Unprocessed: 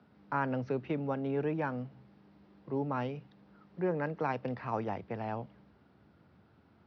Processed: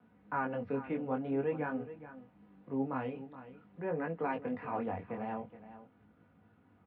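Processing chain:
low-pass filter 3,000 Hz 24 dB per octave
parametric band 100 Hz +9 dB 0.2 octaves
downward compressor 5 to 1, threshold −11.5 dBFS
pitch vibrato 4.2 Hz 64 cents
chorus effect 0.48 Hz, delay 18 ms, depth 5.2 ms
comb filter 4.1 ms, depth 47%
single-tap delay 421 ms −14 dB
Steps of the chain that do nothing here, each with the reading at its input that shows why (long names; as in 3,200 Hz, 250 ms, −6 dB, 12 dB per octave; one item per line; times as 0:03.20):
downward compressor, threshold −11.5 dBFS: peak of its input −18.5 dBFS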